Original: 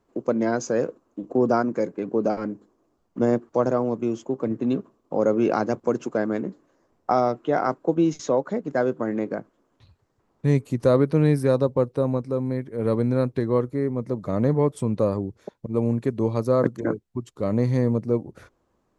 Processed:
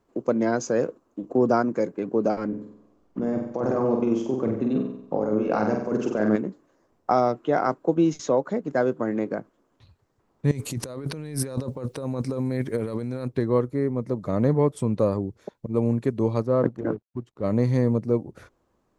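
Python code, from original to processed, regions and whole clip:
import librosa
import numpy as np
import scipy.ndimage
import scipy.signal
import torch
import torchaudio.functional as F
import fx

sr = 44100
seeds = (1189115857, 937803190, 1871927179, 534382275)

y = fx.chain(x, sr, fx.high_shelf(hz=6800.0, db=-11.5),
    fx.over_compress(threshold_db=-25.0, ratio=-1.0),
    fx.room_flutter(wall_m=8.0, rt60_s=0.67), at=(2.48, 6.36))
y = fx.chain(y, sr, fx.high_shelf(hz=2300.0, db=9.5),
    fx.over_compress(threshold_db=-30.0, ratio=-1.0), at=(10.51, 13.28))
y = fx.chain(y, sr, fx.law_mismatch(coded='A'),
    fx.lowpass(hz=1300.0, slope=6),
    fx.transient(attack_db=-2, sustain_db=2), at=(16.42, 17.44))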